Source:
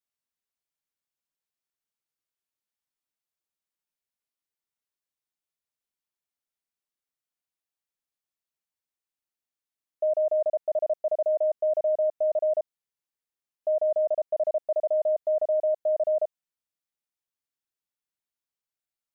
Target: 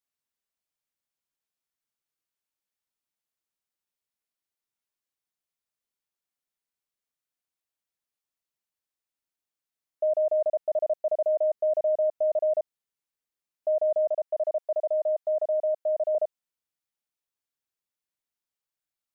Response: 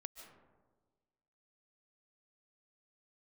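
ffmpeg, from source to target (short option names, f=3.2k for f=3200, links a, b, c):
-filter_complex "[0:a]asettb=1/sr,asplit=3[a][b][c];[a]atrim=end=14.104[d];[b]atrim=start=14.1:end=16.15,asetpts=PTS-STARTPTS,afade=t=in:d=0.004:c=qsin,afade=t=out:st=2.046:d=0.004:c=qsin,highpass=490[e];[c]atrim=start=16.146[f];[d][e]acrossfade=d=0.004:c1=hsin:c2=qsin[g];[g][f]acrossfade=d=0.004:c1=qsin:c2=hsin"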